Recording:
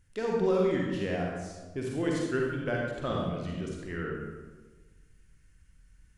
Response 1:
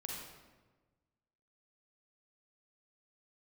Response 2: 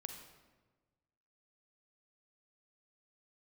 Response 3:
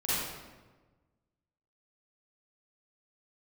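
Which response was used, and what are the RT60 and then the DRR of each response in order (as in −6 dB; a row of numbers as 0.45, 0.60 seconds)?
1; 1.3, 1.3, 1.3 seconds; −2.5, 4.5, −11.5 decibels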